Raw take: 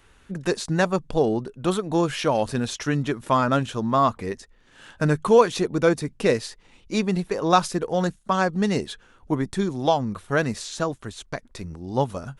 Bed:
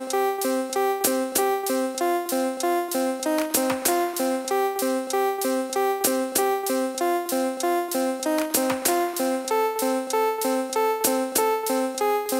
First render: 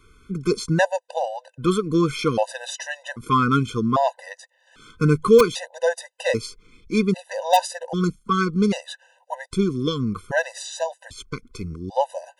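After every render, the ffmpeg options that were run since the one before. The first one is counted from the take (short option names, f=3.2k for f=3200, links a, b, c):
-filter_complex "[0:a]asplit=2[a][b];[b]aeval=exprs='(mod(1.88*val(0)+1,2)-1)/1.88':c=same,volume=-5.5dB[c];[a][c]amix=inputs=2:normalize=0,afftfilt=real='re*gt(sin(2*PI*0.63*pts/sr)*(1-2*mod(floor(b*sr/1024/510),2)),0)':imag='im*gt(sin(2*PI*0.63*pts/sr)*(1-2*mod(floor(b*sr/1024/510),2)),0)':win_size=1024:overlap=0.75"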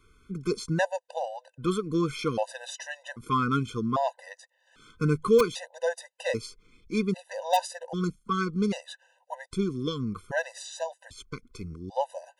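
-af "volume=-7dB"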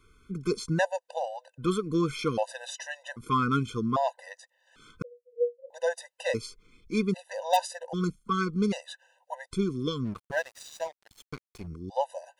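-filter_complex "[0:a]asettb=1/sr,asplit=3[a][b][c];[a]atrim=end=5.024[d];[b]atrim=start=5.02:end=5.7,asetpts=PTS-STARTPTS,afade=t=in:d=0.004:c=qsin,afade=t=out:st=0.676:d=0.004:c=qsin,asuperpass=centerf=520:order=20:qfactor=6.1[e];[c]atrim=start=5.696[f];[d][e]acrossfade=d=0.004:c1=hsin:c2=qsin[g];[g][f]acrossfade=d=0.004:c1=qsin:c2=hsin,asplit=3[h][i][j];[h]afade=t=out:st=10.04:d=0.02[k];[i]aeval=exprs='sgn(val(0))*max(abs(val(0))-0.00562,0)':c=same,afade=t=in:st=10.04:d=0.02,afade=t=out:st=11.66:d=0.02[l];[j]afade=t=in:st=11.66:d=0.02[m];[k][l][m]amix=inputs=3:normalize=0"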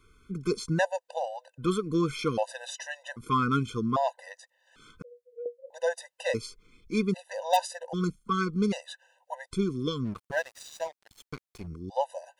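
-filter_complex "[0:a]asettb=1/sr,asplit=3[a][b][c];[a]atrim=end=4.174[d];[b]atrim=start=4.17:end=5.46,asetpts=PTS-STARTPTS,afade=t=in:d=0.004:c=qsin,afade=t=out:st=1.286:d=0.004:c=qsin,acompressor=threshold=-37dB:ratio=6:attack=3.2:release=140:knee=1:detection=peak[e];[c]atrim=start=5.456[f];[d][e]acrossfade=d=0.004:c1=hsin:c2=qsin[g];[g][f]acrossfade=d=0.004:c1=qsin:c2=hsin"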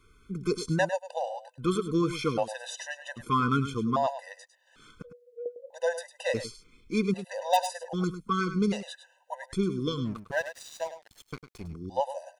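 -af "aecho=1:1:103:0.266"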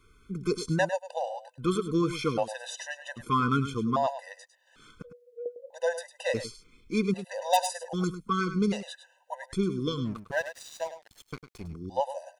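-filter_complex "[0:a]asettb=1/sr,asplit=3[a][b][c];[a]atrim=end=7.424[d];[b]atrim=start=7.42:end=8.15,asetpts=PTS-STARTPTS,afade=t=in:d=0.004:c=qsin,afade=t=out:st=0.726:d=0.004:c=qsin,equalizer=f=8.9k:t=o:w=1.5:g=5.5[e];[c]atrim=start=8.146[f];[d][e]acrossfade=d=0.004:c1=hsin:c2=qsin[g];[g][f]acrossfade=d=0.004:c1=qsin:c2=hsin"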